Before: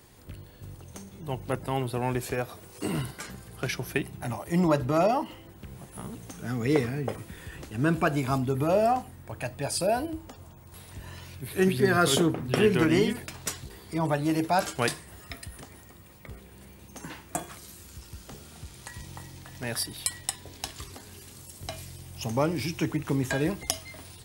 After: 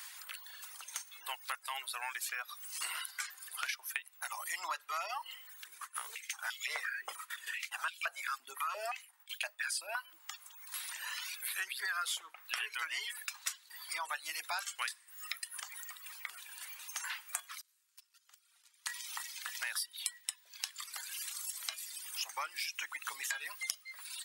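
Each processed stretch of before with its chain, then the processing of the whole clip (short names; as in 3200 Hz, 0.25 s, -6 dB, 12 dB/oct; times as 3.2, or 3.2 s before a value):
5.64–10.2 expander -40 dBFS + stepped high-pass 5.8 Hz 300–3100 Hz
17.61–18.86 gate -39 dBFS, range -32 dB + negative-ratio compressor -56 dBFS
whole clip: HPF 1200 Hz 24 dB/oct; reverb removal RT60 1.1 s; compressor 5:1, threshold -49 dBFS; gain +11.5 dB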